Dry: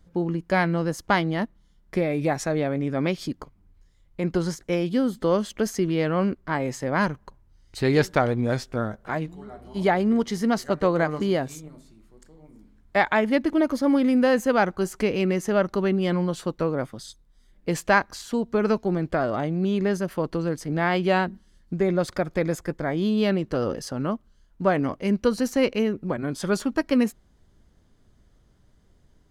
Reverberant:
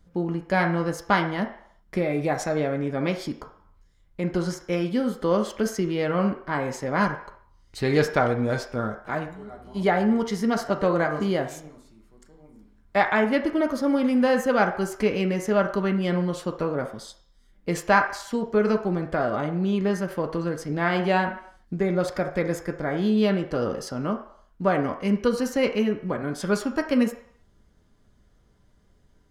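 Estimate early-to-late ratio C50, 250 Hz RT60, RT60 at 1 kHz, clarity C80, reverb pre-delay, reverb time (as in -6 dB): 9.0 dB, 0.50 s, 0.70 s, 13.0 dB, 3 ms, 0.65 s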